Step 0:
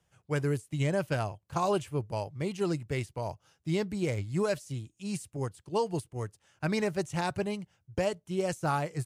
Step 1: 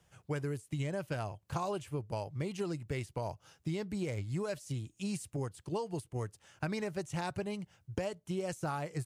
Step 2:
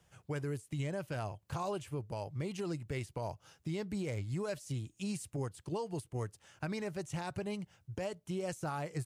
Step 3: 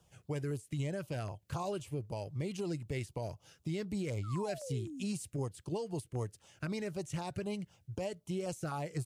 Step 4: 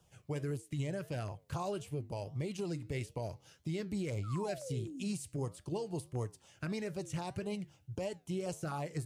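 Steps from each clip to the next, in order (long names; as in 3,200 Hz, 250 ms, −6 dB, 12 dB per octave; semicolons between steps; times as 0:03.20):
downward compressor 6 to 1, threshold −39 dBFS, peak gain reduction 14.5 dB; level +5 dB
brickwall limiter −29 dBFS, peak gain reduction 6.5 dB
sound drawn into the spectrogram fall, 0:04.23–0:05.04, 230–1,400 Hz −45 dBFS; auto-filter notch saw down 3.9 Hz 710–2,200 Hz; level +1 dB
flanger 1.6 Hz, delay 7.3 ms, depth 4.7 ms, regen −85%; level +4 dB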